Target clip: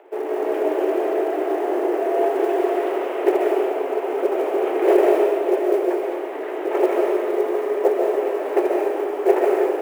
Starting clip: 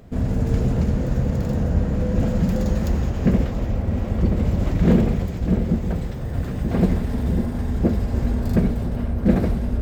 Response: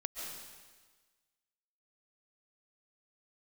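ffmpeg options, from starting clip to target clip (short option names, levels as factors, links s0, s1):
-filter_complex "[0:a]highpass=f=190:t=q:w=0.5412,highpass=f=190:t=q:w=1.307,lowpass=f=2900:t=q:w=0.5176,lowpass=f=2900:t=q:w=0.7071,lowpass=f=2900:t=q:w=1.932,afreqshift=180,acrusher=bits=8:mode=log:mix=0:aa=0.000001[s0];[1:a]atrim=start_sample=2205[s1];[s0][s1]afir=irnorm=-1:irlink=0,volume=1.78"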